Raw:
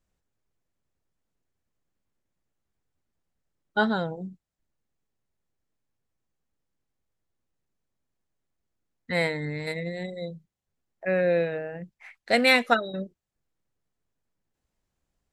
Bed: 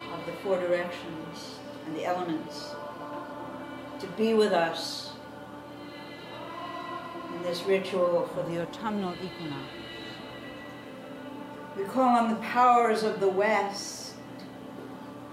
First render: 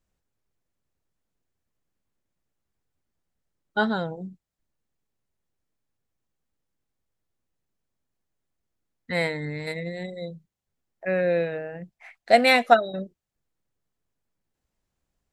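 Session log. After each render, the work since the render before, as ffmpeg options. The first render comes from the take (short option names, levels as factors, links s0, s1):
-filter_complex "[0:a]asettb=1/sr,asplit=3[s0][s1][s2];[s0]atrim=end=11.824[s3];[s1]atrim=start=11.82:end=12.99,asetpts=PTS-STARTPTS,afade=t=in:d=0.004:c=qsin,afade=t=out:st=1.166:d=0.004:c=qsin,equalizer=f=690:t=o:w=0.36:g=10[s4];[s2]atrim=start=12.986[s5];[s3][s4]acrossfade=d=0.004:c1=hsin:c2=qsin[s6];[s6][s5]acrossfade=d=0.004:c1=qsin:c2=hsin"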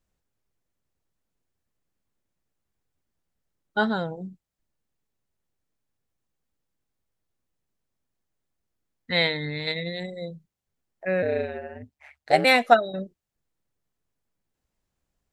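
-filter_complex "[0:a]asettb=1/sr,asplit=3[s0][s1][s2];[s0]atrim=end=9.124[s3];[s1]atrim=start=9.12:end=10,asetpts=PTS-STARTPTS,afade=t=in:d=0.004:c=qsin,afade=t=out:st=0.876:d=0.004:c=qsin,lowpass=f=3600:t=q:w=7[s4];[s2]atrim=start=9.996[s5];[s3][s4]acrossfade=d=0.004:c1=hsin:c2=qsin[s6];[s6][s5]acrossfade=d=0.004:c1=qsin:c2=hsin,asettb=1/sr,asplit=3[s7][s8][s9];[s7]atrim=end=11.224[s10];[s8]atrim=start=11.22:end=12.45,asetpts=PTS-STARTPTS,afade=t=in:d=0.004:c=qsin,afade=t=out:st=1.226:d=0.004:c=qsin,aeval=exprs='val(0)*sin(2*PI*72*n/s)':c=same[s11];[s9]atrim=start=12.446[s12];[s10][s11]acrossfade=d=0.004:c1=hsin:c2=qsin[s13];[s13][s12]acrossfade=d=0.004:c1=qsin:c2=hsin"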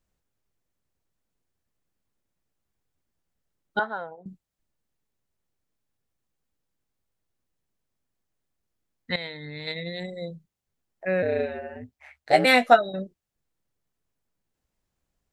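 -filter_complex "[0:a]asettb=1/sr,asplit=3[s0][s1][s2];[s0]atrim=end=3.794[s3];[s1]atrim=start=3.79:end=4.26,asetpts=PTS-STARTPTS,afade=t=in:d=0.004:c=qsin,afade=t=out:st=0.466:d=0.004:c=qsin,acrossover=split=560 2000:gain=0.0891 1 0.0794[s4][s5][s6];[s4][s5][s6]amix=inputs=3:normalize=0[s7];[s2]atrim=start=4.256[s8];[s3][s7]acrossfade=d=0.004:c1=hsin:c2=qsin[s9];[s9][s8]acrossfade=d=0.004:c1=qsin:c2=hsin,asettb=1/sr,asplit=3[s10][s11][s12];[s10]atrim=end=11.384[s13];[s11]atrim=start=11.38:end=12.89,asetpts=PTS-STARTPTS,afade=t=in:d=0.004:c=qsin,afade=t=out:st=1.506:d=0.004:c=qsin,asplit=2[s14][s15];[s15]adelay=16,volume=0.447[s16];[s14][s16]amix=inputs=2:normalize=0,atrim=end_sample=66591[s17];[s12]atrim=start=12.886[s18];[s13][s17]acrossfade=d=0.004:c1=hsin:c2=qsin[s19];[s19][s18]acrossfade=d=0.004:c1=qsin:c2=hsin,asplit=2[s20][s21];[s20]atrim=end=9.16,asetpts=PTS-STARTPTS,afade=t=out:st=9.156:d=0.004:c=hsin:silence=0.149624[s22];[s21]atrim=start=9.16,asetpts=PTS-STARTPTS,afade=t=in:d=0.98:silence=0.149624[s23];[s22][s23]concat=n=2:v=0:a=1"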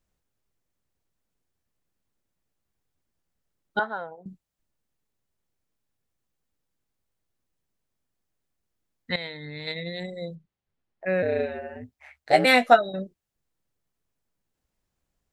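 -filter_complex "[0:a]asettb=1/sr,asplit=3[s0][s1][s2];[s0]atrim=end=10.354[s3];[s1]atrim=start=10.35:end=11.06,asetpts=PTS-STARTPTS,afade=t=in:d=0.004:c=qsin,afade=t=out:st=0.706:d=0.004:c=qsin,lowpass=3600[s4];[s2]atrim=start=11.056[s5];[s3][s4]acrossfade=d=0.004:c1=hsin:c2=qsin[s6];[s6][s5]acrossfade=d=0.004:c1=qsin:c2=hsin"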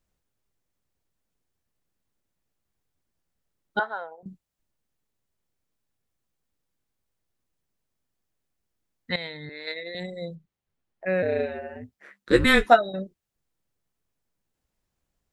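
-filter_complex "[0:a]asettb=1/sr,asplit=3[s0][s1][s2];[s0]atrim=end=3.804[s3];[s1]atrim=start=3.8:end=4.23,asetpts=PTS-STARTPTS,afade=t=in:d=0.004:c=qsin,afade=t=out:st=0.426:d=0.004:c=qsin,highpass=440[s4];[s2]atrim=start=4.226[s5];[s3][s4]acrossfade=d=0.004:c1=hsin:c2=qsin[s6];[s6][s5]acrossfade=d=0.004:c1=qsin:c2=hsin,asettb=1/sr,asplit=3[s7][s8][s9];[s7]atrim=end=9.494[s10];[s8]atrim=start=9.49:end=9.95,asetpts=PTS-STARTPTS,afade=t=in:d=0.004:c=qsin,afade=t=out:st=0.456:d=0.004:c=qsin,highpass=f=310:w=0.5412,highpass=f=310:w=1.3066,equalizer=f=850:t=q:w=4:g=-7,equalizer=f=1600:t=q:w=4:g=6,equalizer=f=3200:t=q:w=4:g=-8,lowpass=f=7100:w=0.5412,lowpass=f=7100:w=1.3066[s11];[s9]atrim=start=9.946[s12];[s10][s11]acrossfade=d=0.004:c1=hsin:c2=qsin[s13];[s13][s12]acrossfade=d=0.004:c1=qsin:c2=hsin,asettb=1/sr,asplit=3[s14][s15][s16];[s14]atrim=end=11.974[s17];[s15]atrim=start=11.97:end=12.69,asetpts=PTS-STARTPTS,afade=t=in:d=0.004:c=qsin,afade=t=out:st=0.716:d=0.004:c=qsin,afreqshift=-270[s18];[s16]atrim=start=12.686[s19];[s17][s18]acrossfade=d=0.004:c1=hsin:c2=qsin[s20];[s20][s19]acrossfade=d=0.004:c1=qsin:c2=hsin"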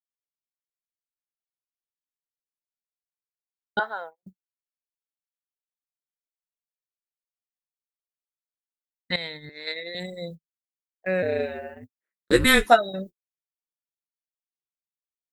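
-af "aemphasis=mode=production:type=50fm,agate=range=0.00794:threshold=0.0126:ratio=16:detection=peak"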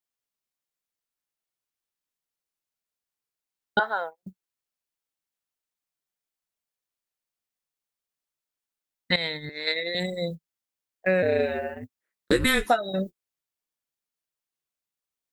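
-filter_complex "[0:a]asplit=2[s0][s1];[s1]alimiter=limit=0.266:level=0:latency=1:release=241,volume=0.891[s2];[s0][s2]amix=inputs=2:normalize=0,acompressor=threshold=0.126:ratio=6"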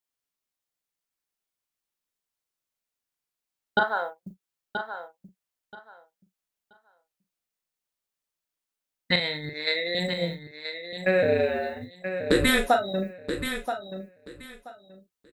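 -filter_complex "[0:a]asplit=2[s0][s1];[s1]adelay=40,volume=0.398[s2];[s0][s2]amix=inputs=2:normalize=0,aecho=1:1:979|1958|2937:0.355|0.071|0.0142"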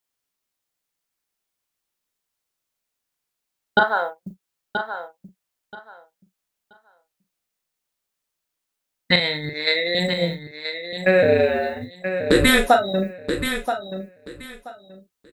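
-af "volume=2,alimiter=limit=0.708:level=0:latency=1"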